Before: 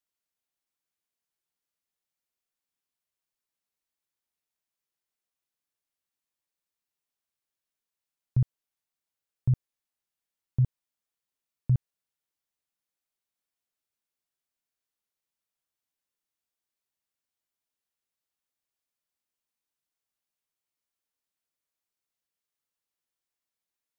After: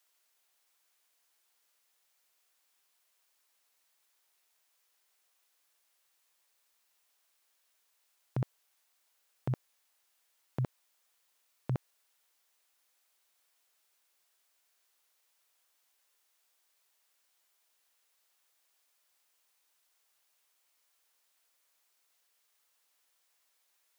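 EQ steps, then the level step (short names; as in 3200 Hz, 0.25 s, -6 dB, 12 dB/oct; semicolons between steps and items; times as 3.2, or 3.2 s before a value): HPF 530 Hz 12 dB/oct; +15.0 dB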